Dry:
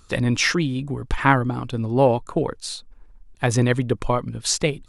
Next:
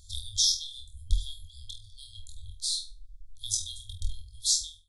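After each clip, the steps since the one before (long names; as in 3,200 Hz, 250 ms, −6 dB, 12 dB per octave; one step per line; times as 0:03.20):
fade-out on the ending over 0.58 s
flutter between parallel walls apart 4.2 metres, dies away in 0.3 s
brick-wall band-stop 100–3,200 Hz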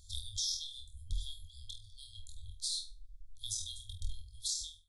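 brickwall limiter −21 dBFS, peak gain reduction 10.5 dB
level −4.5 dB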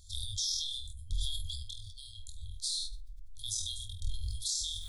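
level that may fall only so fast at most 23 dB per second
level +1.5 dB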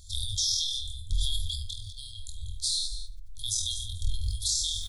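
single-tap delay 194 ms −12.5 dB
level +6 dB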